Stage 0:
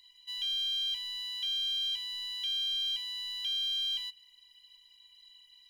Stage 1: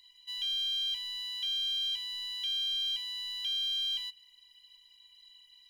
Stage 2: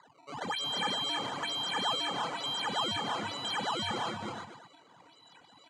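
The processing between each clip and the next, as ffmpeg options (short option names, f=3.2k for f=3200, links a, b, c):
-af anull
-af "acrusher=samples=15:mix=1:aa=0.000001:lfo=1:lforange=24:lforate=1.1,highpass=f=130:w=0.5412,highpass=f=130:w=1.3066,equalizer=f=230:t=q:w=4:g=-7,equalizer=f=410:t=q:w=4:g=-8,equalizer=f=590:t=q:w=4:g=-6,equalizer=f=880:t=q:w=4:g=5,equalizer=f=2.7k:t=q:w=4:g=-4,equalizer=f=5.4k:t=q:w=4:g=-9,lowpass=f=6.9k:w=0.5412,lowpass=f=6.9k:w=1.3066,aecho=1:1:318|346|468|566:0.596|0.531|0.224|0.2"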